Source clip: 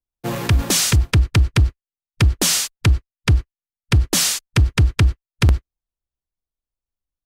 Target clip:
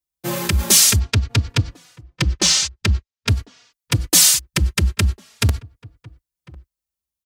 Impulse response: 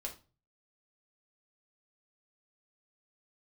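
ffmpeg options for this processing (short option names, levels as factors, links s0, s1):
-filter_complex "[0:a]asettb=1/sr,asplit=3[s0][s1][s2];[s0]atrim=end=0.994[s3];[s1]atrim=start=0.99:end=3.29,asetpts=PTS-STARTPTS,afade=t=in:d=0.004:c=qsin,afade=t=out:st=2.296:d=0.004:c=qsin,lowpass=f=6300:w=0.5412,lowpass=f=6300:w=1.3066[s4];[s2]atrim=start=3.286[s5];[s3][s4]acrossfade=d=0.004:c1=hsin:c2=qsin[s6];[s6][s5]acrossfade=d=0.004:c1=qsin:c2=hsin,asplit=2[s7][s8];[s8]adelay=1050,volume=0.0631,highshelf=f=4000:g=-23.6[s9];[s7][s9]amix=inputs=2:normalize=0,acontrast=86,highpass=55,highshelf=f=3800:g=10.5,asplit=2[s10][s11];[s11]adelay=3.5,afreqshift=0.47[s12];[s10][s12]amix=inputs=2:normalize=1,volume=0.562"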